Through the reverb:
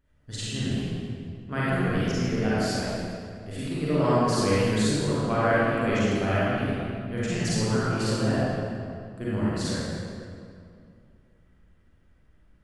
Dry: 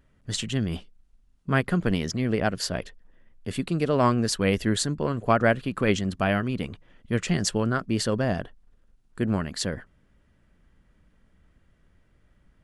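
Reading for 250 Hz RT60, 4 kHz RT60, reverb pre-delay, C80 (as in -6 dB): 2.7 s, 1.6 s, 34 ms, -3.5 dB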